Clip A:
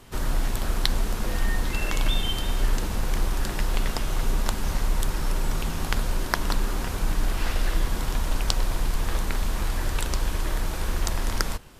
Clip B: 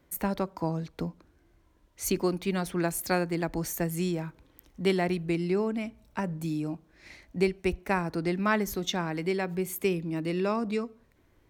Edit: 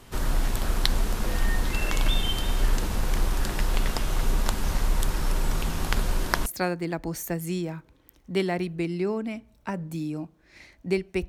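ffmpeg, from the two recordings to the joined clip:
ffmpeg -i cue0.wav -i cue1.wav -filter_complex "[1:a]asplit=2[link_01][link_02];[0:a]apad=whole_dur=11.28,atrim=end=11.28,atrim=end=6.462[link_03];[link_02]atrim=start=2.958:end=7.78[link_04];[link_01]atrim=start=2.33:end=2.96,asetpts=PTS-STARTPTS,volume=-16.5dB,afade=type=in:duration=0.004:curve=hsin,afade=type=out:start_time=0.626:duration=0.004:curve=hsin,adelay=5830[link_05];[link_03][link_04]acrossfade=duration=0.004:curve1=hsin:curve2=hsin[link_06];[link_06][link_05]amix=inputs=2:normalize=0" out.wav

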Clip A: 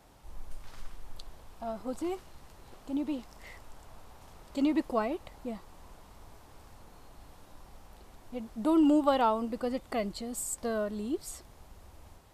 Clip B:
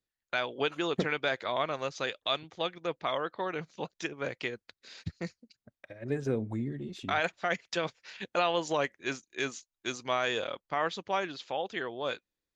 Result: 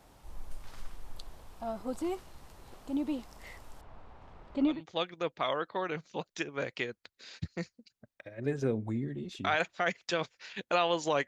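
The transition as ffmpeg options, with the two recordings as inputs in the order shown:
ffmpeg -i cue0.wav -i cue1.wav -filter_complex "[0:a]asettb=1/sr,asplit=3[link_01][link_02][link_03];[link_01]atrim=end=3.814[link_04];[link_02]atrim=start=3.81:end=4.82,asetpts=PTS-STARTPTS,afade=type=in:duration=0.004:curve=qsin,afade=type=out:start_time=1.006:duration=0.004:curve=qsin,lowpass=2500[link_05];[link_03]atrim=start=4.816[link_06];[link_04][link_05]acrossfade=duration=0.004:curve1=hsin:curve2=qsin[link_07];[link_07][link_06]acrossfade=duration=0.004:curve1=qsin:curve2=hsin,apad=whole_dur=11.27,atrim=end=11.27,atrim=end=4.82,asetpts=PTS-STARTPTS[link_08];[1:a]atrim=start=2.3:end=8.91,asetpts=PTS-STARTPTS[link_09];[link_08][link_09]acrossfade=duration=0.16:curve1=tri:curve2=tri" out.wav

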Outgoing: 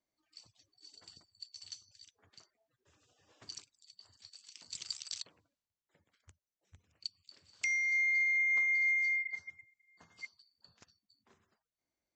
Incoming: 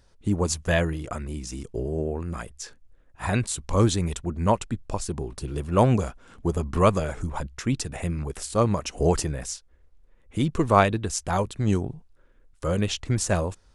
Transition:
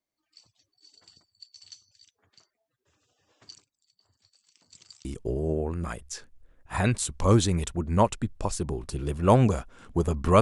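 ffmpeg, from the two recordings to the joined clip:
ffmpeg -i cue0.wav -i cue1.wav -filter_complex "[0:a]asettb=1/sr,asplit=3[link_01][link_02][link_03];[link_01]atrim=end=3.554[link_04];[link_02]atrim=start=3.55:end=5.05,asetpts=PTS-STARTPTS,afade=type=in:duration=0.004:curve=qsin,afade=type=out:start_time=1.496:duration=0.004:curve=qsin,equalizer=frequency=3900:width=0.38:gain=-10.5[link_05];[link_03]atrim=start=5.046[link_06];[link_04][link_05]acrossfade=duration=0.004:curve1=hsin:curve2=qsin[link_07];[link_07][link_06]acrossfade=duration=0.004:curve1=qsin:curve2=hsin,apad=whole_dur=10.41,atrim=end=10.41,atrim=end=5.052[link_08];[1:a]atrim=start=1.538:end=6.9[link_09];[link_08][link_09]acrossfade=duration=0.004:curve1=hsin:curve2=hsin" out.wav

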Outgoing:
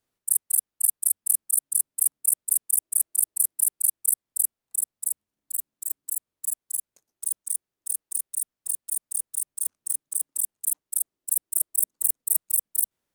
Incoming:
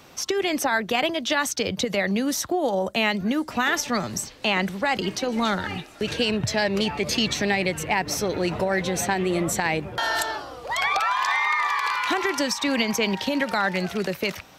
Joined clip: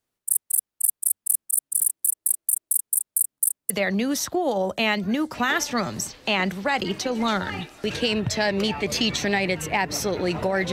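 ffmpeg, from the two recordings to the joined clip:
ffmpeg -i cue0.wav -i cue1.wav -filter_complex "[0:a]apad=whole_dur=10.72,atrim=end=10.72,asplit=2[link_01][link_02];[link_01]atrim=end=1.802[link_03];[link_02]atrim=start=1.798:end=3.702,asetpts=PTS-STARTPTS,areverse[link_04];[1:a]atrim=start=1.868:end=8.89[link_05];[link_03][link_04]acrossfade=duration=0.004:curve1=hsin:curve2=hsin[link_06];[link_06][link_05]acrossfade=duration=0.004:curve1=hsin:curve2=hsin" out.wav

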